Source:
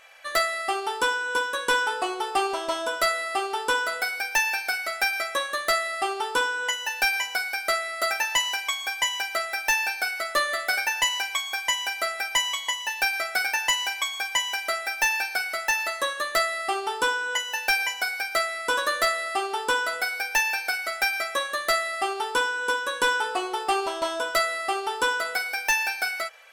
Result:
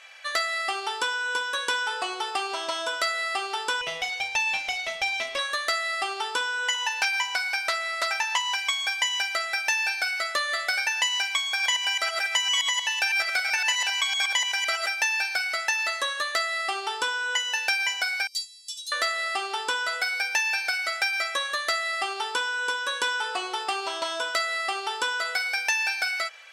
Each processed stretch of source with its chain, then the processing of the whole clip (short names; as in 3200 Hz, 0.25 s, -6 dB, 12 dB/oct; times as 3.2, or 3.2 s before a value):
3.81–5.39 minimum comb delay 0.33 ms + LPF 3100 Hz 6 dB/oct
6.74–8.55 bell 960 Hz +13 dB 0.22 oct + Doppler distortion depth 0.15 ms
11.47–14.89 reverse delay 0.127 s, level -3 dB + low shelf 190 Hz -6 dB
18.27–18.92 inverse Chebyshev high-pass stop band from 1700 Hz, stop band 50 dB + upward expander, over -46 dBFS
whole clip: compressor, threshold -25 dBFS; LPF 5300 Hz 12 dB/oct; tilt +3.5 dB/oct